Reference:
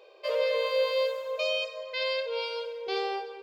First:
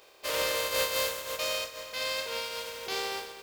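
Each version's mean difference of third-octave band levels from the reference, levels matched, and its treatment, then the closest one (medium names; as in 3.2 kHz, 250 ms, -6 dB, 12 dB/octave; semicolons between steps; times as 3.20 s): 13.5 dB: spectral contrast reduction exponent 0.41; trim -2.5 dB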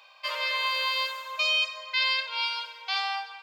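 5.5 dB: inverse Chebyshev high-pass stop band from 440 Hz, stop band 40 dB; trim +7.5 dB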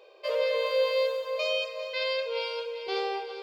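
1.0 dB: thinning echo 398 ms, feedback 55%, high-pass 420 Hz, level -12 dB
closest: third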